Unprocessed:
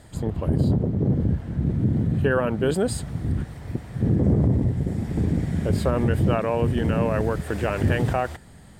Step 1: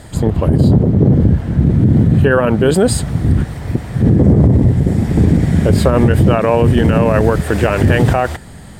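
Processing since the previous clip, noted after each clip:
boost into a limiter +13.5 dB
level −1 dB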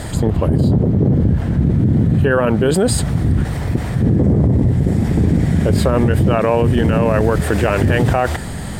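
envelope flattener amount 50%
level −5 dB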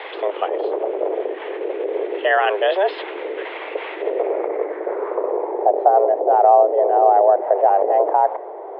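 low-pass filter sweep 2,700 Hz → 550 Hz, 0:04.16–0:05.75
single-sideband voice off tune +190 Hz 240–3,500 Hz
level −2 dB

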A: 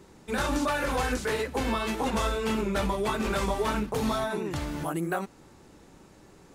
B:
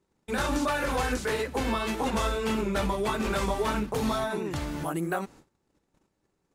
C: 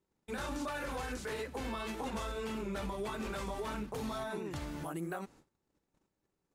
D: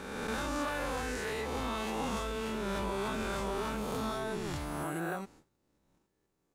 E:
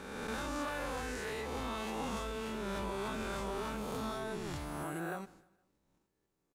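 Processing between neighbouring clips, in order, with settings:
noise gate −49 dBFS, range −23 dB
brickwall limiter −22 dBFS, peak gain reduction 5 dB; level −8 dB
peak hold with a rise ahead of every peak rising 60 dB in 1.80 s
repeating echo 155 ms, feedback 45%, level −23 dB; level −3.5 dB

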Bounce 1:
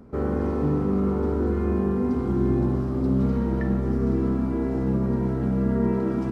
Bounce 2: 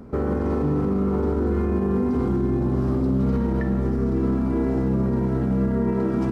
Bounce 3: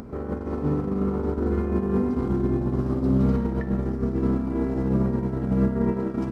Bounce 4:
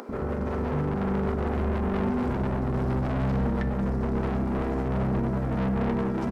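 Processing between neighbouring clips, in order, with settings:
brickwall limiter −21 dBFS, peak gain reduction 10 dB; level +6 dB
noise gate −20 dBFS, range −21 dB; upward compression, threshold −29 dBFS; level +4.5 dB
soft clipping −29.5 dBFS, distortion −7 dB; multiband delay without the direct sound highs, lows 90 ms, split 330 Hz; level +7 dB

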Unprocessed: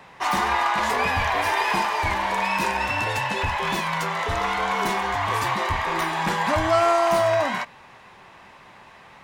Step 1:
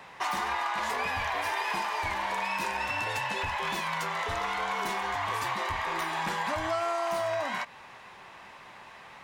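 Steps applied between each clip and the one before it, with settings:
low-shelf EQ 420 Hz −6 dB
downward compressor 3 to 1, threshold −30 dBFS, peak gain reduction 10.5 dB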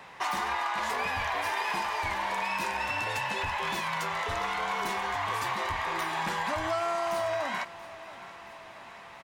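repeating echo 679 ms, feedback 58%, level −17.5 dB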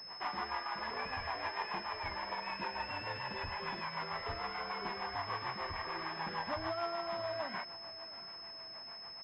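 echo ahead of the sound 100 ms −14.5 dB
rotating-speaker cabinet horn 6.7 Hz
switching amplifier with a slow clock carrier 5,200 Hz
level −5 dB

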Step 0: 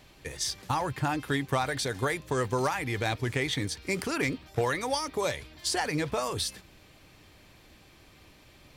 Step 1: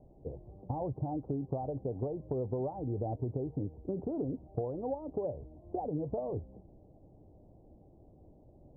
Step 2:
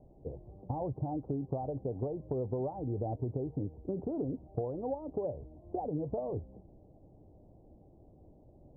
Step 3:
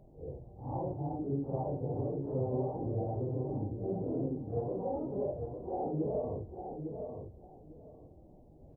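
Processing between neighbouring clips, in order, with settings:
Butterworth low-pass 760 Hz 48 dB per octave; downward compressor, threshold −31 dBFS, peak gain reduction 8 dB
no processing that can be heard
random phases in long frames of 200 ms; repeating echo 853 ms, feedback 20%, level −6.5 dB

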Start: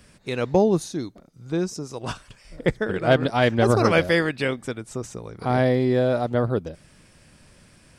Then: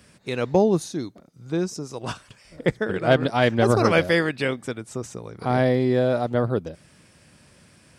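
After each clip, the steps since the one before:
high-pass filter 76 Hz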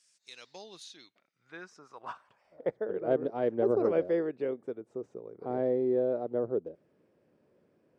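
band-pass filter sweep 6,600 Hz → 420 Hz, 0:00.13–0:03.09
level −3.5 dB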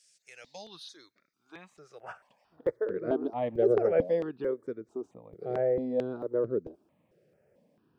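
step-sequenced phaser 4.5 Hz 260–3,000 Hz
level +4 dB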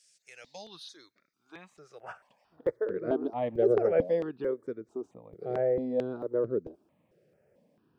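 no processing that can be heard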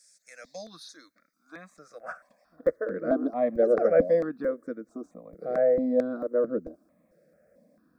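phaser with its sweep stopped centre 590 Hz, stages 8
level +7 dB

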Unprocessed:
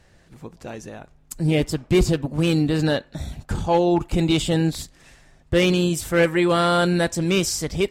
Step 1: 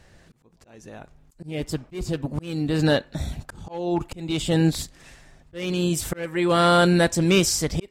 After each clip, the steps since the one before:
volume swells 541 ms
level +2 dB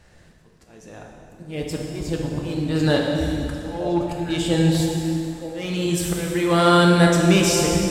echo through a band-pass that steps 462 ms, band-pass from 250 Hz, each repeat 1.4 octaves, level −4.5 dB
dense smooth reverb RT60 2.3 s, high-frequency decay 0.95×, DRR −0.5 dB
level −1 dB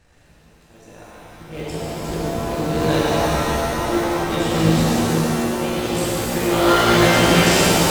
sub-harmonics by changed cycles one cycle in 3, muted
reverb with rising layers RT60 2.5 s, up +7 semitones, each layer −2 dB, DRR −4.5 dB
level −4 dB

